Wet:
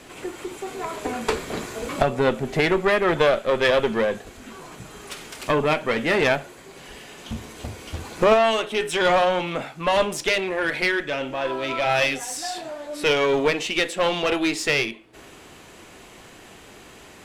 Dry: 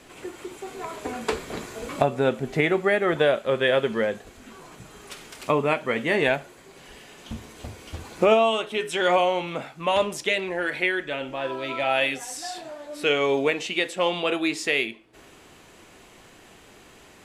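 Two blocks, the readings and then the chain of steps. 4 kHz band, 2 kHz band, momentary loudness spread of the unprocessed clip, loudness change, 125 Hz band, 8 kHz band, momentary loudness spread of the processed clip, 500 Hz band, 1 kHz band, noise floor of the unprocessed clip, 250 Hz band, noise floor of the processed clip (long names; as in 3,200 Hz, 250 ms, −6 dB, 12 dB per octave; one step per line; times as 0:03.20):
+2.5 dB, +2.0 dB, 17 LU, +2.0 dB, +2.5 dB, +4.5 dB, 17 LU, +2.0 dB, +2.5 dB, −51 dBFS, +2.0 dB, −46 dBFS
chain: one-sided soft clipper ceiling −24 dBFS
level +5 dB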